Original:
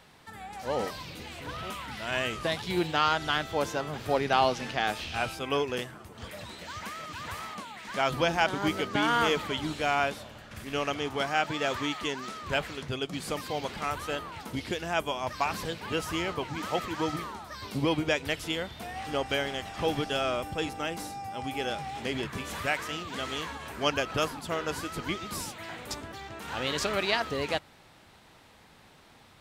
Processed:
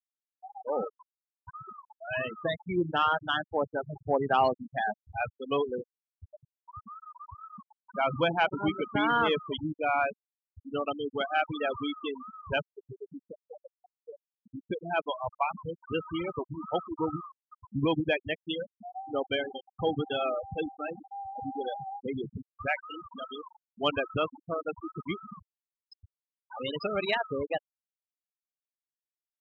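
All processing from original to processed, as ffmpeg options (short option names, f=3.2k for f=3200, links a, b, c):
-filter_complex "[0:a]asettb=1/sr,asplit=3[a][b][c];[a]atrim=end=12.704[d];[b]atrim=start=12.7:end=14.69,asetpts=PTS-STARTPTS,afade=t=in:d=0.004:c=qsin,afade=t=out:st=1.986:d=0.004:c=qsin,lowshelf=f=85:g=-6,acrossover=split=140|830[e][f][g];[e]acompressor=threshold=-48dB:ratio=4[h];[f]acompressor=threshold=-39dB:ratio=4[i];[g]acompressor=threshold=-49dB:ratio=4[j];[h][i][j]amix=inputs=3:normalize=0[k];[c]atrim=start=14.686[l];[d][k]acrossfade=d=0.004:c1=hsin:c2=qsin[m];[m][l]acrossfade=d=0.004:c1=qsin:c2=hsin,highpass=42,afftfilt=real='re*gte(hypot(re,im),0.0891)':imag='im*gte(hypot(re,im),0.0891)':win_size=1024:overlap=0.75,acontrast=87,volume=-6.5dB"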